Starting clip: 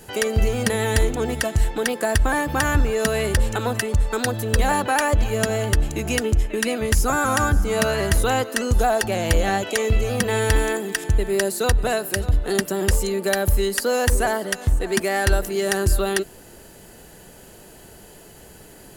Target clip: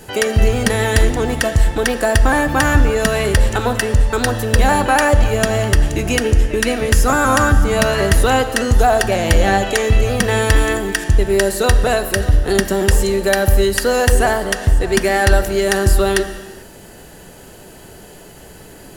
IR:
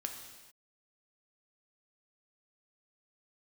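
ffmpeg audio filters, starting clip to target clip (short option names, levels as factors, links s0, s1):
-filter_complex "[0:a]asplit=2[s0][s1];[1:a]atrim=start_sample=2205,highshelf=f=8600:g=-10[s2];[s1][s2]afir=irnorm=-1:irlink=0,volume=1.26[s3];[s0][s3]amix=inputs=2:normalize=0"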